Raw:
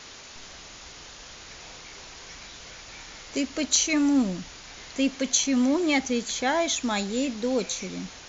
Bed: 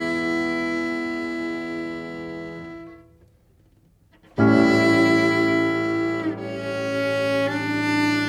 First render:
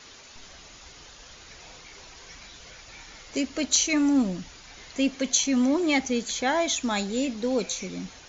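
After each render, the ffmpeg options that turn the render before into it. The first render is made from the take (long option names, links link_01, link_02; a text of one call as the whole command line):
ffmpeg -i in.wav -af "afftdn=noise_reduction=6:noise_floor=-45" out.wav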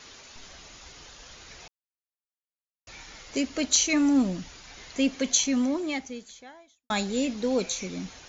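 ffmpeg -i in.wav -filter_complex "[0:a]asplit=4[link_01][link_02][link_03][link_04];[link_01]atrim=end=1.68,asetpts=PTS-STARTPTS,afade=type=out:start_time=1.676:duration=0.004:curve=hsin[link_05];[link_02]atrim=start=1.68:end=2.87,asetpts=PTS-STARTPTS,volume=0[link_06];[link_03]atrim=start=2.87:end=6.9,asetpts=PTS-STARTPTS,afade=type=in:duration=0.004:curve=hsin,afade=type=out:start_time=2.53:duration=1.5:curve=qua[link_07];[link_04]atrim=start=6.9,asetpts=PTS-STARTPTS,afade=type=in:duration=0.004:curve=hsin[link_08];[link_05][link_06][link_07][link_08]concat=n=4:v=0:a=1" out.wav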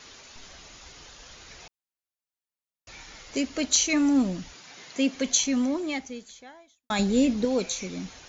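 ffmpeg -i in.wav -filter_complex "[0:a]asettb=1/sr,asplit=3[link_01][link_02][link_03];[link_01]atrim=end=4.534[link_04];[link_02]atrim=start=4.53:end=5.15,asetpts=PTS-STARTPTS,afade=type=in:duration=0.004:curve=qsin,afade=type=out:start_time=0.616:duration=0.004:curve=qsin,highpass=frequency=130:width=0.5412,highpass=frequency=130:width=1.3066[link_05];[link_03]atrim=start=5.146[link_06];[link_04][link_05]acrossfade=duration=0.004:curve1=hsin:curve2=qsin[link_07];[link_07][link_06]acrossfade=duration=0.004:curve1=qsin:curve2=hsin,asettb=1/sr,asplit=3[link_08][link_09][link_10];[link_08]atrim=end=6.994[link_11];[link_09]atrim=start=6.99:end=7.45,asetpts=PTS-STARTPTS,afade=type=in:duration=0.004:curve=qsin,afade=type=out:start_time=0.456:duration=0.004:curve=qsin,lowshelf=frequency=390:gain=9.5[link_12];[link_10]atrim=start=7.446[link_13];[link_11][link_12]acrossfade=duration=0.004:curve1=hsin:curve2=qsin[link_14];[link_14][link_13]acrossfade=duration=0.004:curve1=qsin:curve2=hsin" out.wav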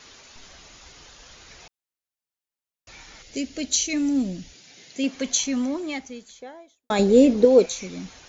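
ffmpeg -i in.wav -filter_complex "[0:a]asettb=1/sr,asplit=3[link_01][link_02][link_03];[link_01]atrim=end=3.224[link_04];[link_02]atrim=start=3.22:end=5.04,asetpts=PTS-STARTPTS,afade=type=in:duration=0.004:curve=qsin,afade=type=out:start_time=1.816:duration=0.004:curve=qsin,equalizer=frequency=1100:width_type=o:width=1.1:gain=-14.5[link_05];[link_03]atrim=start=5.036[link_06];[link_04][link_05]acrossfade=duration=0.004:curve1=hsin:curve2=qsin[link_07];[link_07][link_06]acrossfade=duration=0.004:curve1=qsin:curve2=hsin,asettb=1/sr,asplit=3[link_08][link_09][link_10];[link_08]atrim=end=6.424[link_11];[link_09]atrim=start=6.42:end=7.66,asetpts=PTS-STARTPTS,afade=type=in:duration=0.004:curve=qsin,afade=type=out:start_time=1.236:duration=0.004:curve=qsin,equalizer=frequency=450:width_type=o:width=1.2:gain=13.5[link_12];[link_10]atrim=start=7.656[link_13];[link_11][link_12]acrossfade=duration=0.004:curve1=hsin:curve2=qsin[link_14];[link_14][link_13]acrossfade=duration=0.004:curve1=qsin:curve2=hsin" out.wav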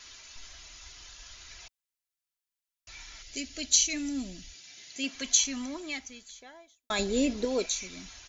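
ffmpeg -i in.wav -af "equalizer=frequency=350:width=0.37:gain=-13.5,aecho=1:1:3:0.39" out.wav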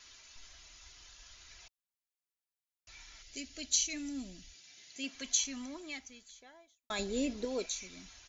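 ffmpeg -i in.wav -af "volume=-7dB" out.wav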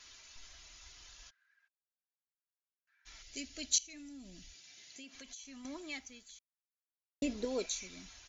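ffmpeg -i in.wav -filter_complex "[0:a]asplit=3[link_01][link_02][link_03];[link_01]afade=type=out:start_time=1.29:duration=0.02[link_04];[link_02]bandpass=frequency=1600:width_type=q:width=20,afade=type=in:start_time=1.29:duration=0.02,afade=type=out:start_time=3.05:duration=0.02[link_05];[link_03]afade=type=in:start_time=3.05:duration=0.02[link_06];[link_04][link_05][link_06]amix=inputs=3:normalize=0,asettb=1/sr,asplit=3[link_07][link_08][link_09];[link_07]atrim=end=3.784[link_10];[link_08]atrim=start=3.78:end=5.65,asetpts=PTS-STARTPTS,afade=type=in:duration=0.004:curve=qsin,afade=type=out:start_time=1.866:duration=0.004:curve=qsin,acompressor=threshold=-48dB:ratio=6:attack=3.2:release=140:knee=1:detection=peak[link_11];[link_09]atrim=start=5.646[link_12];[link_10][link_11]acrossfade=duration=0.004:curve1=hsin:curve2=qsin[link_13];[link_13][link_12]acrossfade=duration=0.004:curve1=qsin:curve2=hsin,asplit=3[link_14][link_15][link_16];[link_14]atrim=end=6.39,asetpts=PTS-STARTPTS,afade=type=out:start_time=6.386:duration=0.004:curve=hsin[link_17];[link_15]atrim=start=6.39:end=7.22,asetpts=PTS-STARTPTS,volume=0[link_18];[link_16]atrim=start=7.22,asetpts=PTS-STARTPTS,afade=type=in:duration=0.004:curve=hsin[link_19];[link_17][link_18][link_19]concat=n=3:v=0:a=1" out.wav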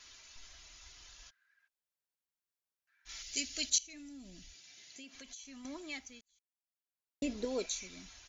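ffmpeg -i in.wav -filter_complex "[0:a]asettb=1/sr,asplit=3[link_01][link_02][link_03];[link_01]atrim=end=3.094[link_04];[link_02]atrim=start=3.09:end=3.7,asetpts=PTS-STARTPTS,afade=type=in:duration=0.004:curve=qsin,afade=type=out:start_time=0.606:duration=0.004:curve=qsin,highshelf=frequency=2000:gain=11[link_05];[link_03]atrim=start=3.696[link_06];[link_04][link_05]acrossfade=duration=0.004:curve1=hsin:curve2=qsin[link_07];[link_07][link_06]acrossfade=duration=0.004:curve1=qsin:curve2=hsin,asplit=2[link_08][link_09];[link_08]atrim=end=6.21,asetpts=PTS-STARTPTS,afade=type=out:start_time=6.206:duration=0.004:curve=hsin[link_10];[link_09]atrim=start=6.21,asetpts=PTS-STARTPTS,afade=type=in:duration=1.16[link_11];[link_10][link_11]concat=n=2:v=0:a=1" out.wav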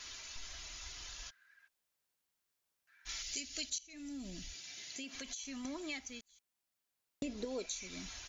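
ffmpeg -i in.wav -filter_complex "[0:a]asplit=2[link_01][link_02];[link_02]alimiter=level_in=3dB:limit=-24dB:level=0:latency=1:release=489,volume=-3dB,volume=3dB[link_03];[link_01][link_03]amix=inputs=2:normalize=0,acompressor=threshold=-41dB:ratio=3" out.wav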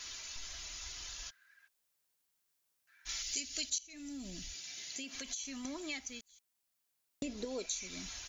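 ffmpeg -i in.wav -af "highshelf=frequency=4800:gain=6" out.wav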